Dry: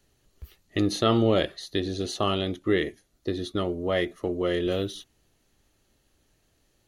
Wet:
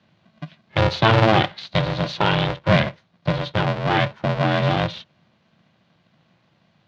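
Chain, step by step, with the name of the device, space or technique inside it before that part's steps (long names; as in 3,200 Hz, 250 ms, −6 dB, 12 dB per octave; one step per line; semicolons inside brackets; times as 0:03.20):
ring modulator pedal into a guitar cabinet (ring modulator with a square carrier 220 Hz; loudspeaker in its box 98–4,100 Hz, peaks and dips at 110 Hz +6 dB, 160 Hz +7 dB, 270 Hz −9 dB, 430 Hz −6 dB)
level +7 dB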